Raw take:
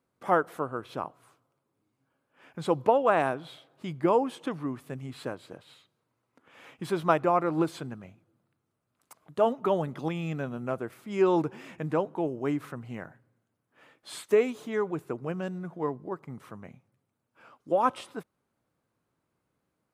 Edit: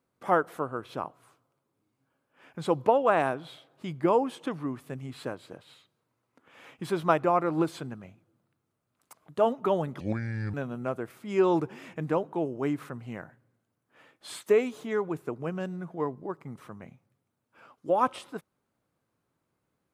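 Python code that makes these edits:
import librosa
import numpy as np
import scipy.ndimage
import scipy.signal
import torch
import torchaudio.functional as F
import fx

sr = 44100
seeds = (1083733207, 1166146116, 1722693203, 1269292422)

y = fx.edit(x, sr, fx.speed_span(start_s=10.0, length_s=0.36, speed=0.67), tone=tone)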